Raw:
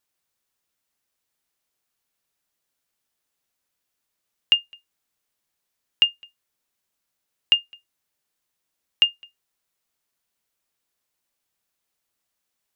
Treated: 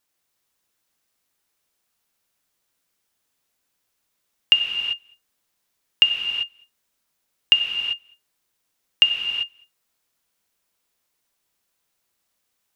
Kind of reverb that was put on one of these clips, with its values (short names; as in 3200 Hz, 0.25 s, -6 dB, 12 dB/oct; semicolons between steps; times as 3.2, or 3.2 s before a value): non-linear reverb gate 0.42 s flat, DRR 2.5 dB; gain +3 dB